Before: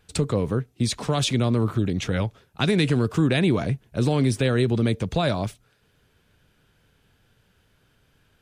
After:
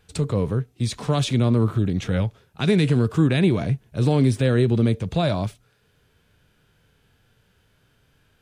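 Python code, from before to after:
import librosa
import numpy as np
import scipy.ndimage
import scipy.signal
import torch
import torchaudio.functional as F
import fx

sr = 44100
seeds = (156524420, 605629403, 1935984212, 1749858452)

y = fx.hpss(x, sr, part='harmonic', gain_db=8)
y = y * librosa.db_to_amplitude(-4.5)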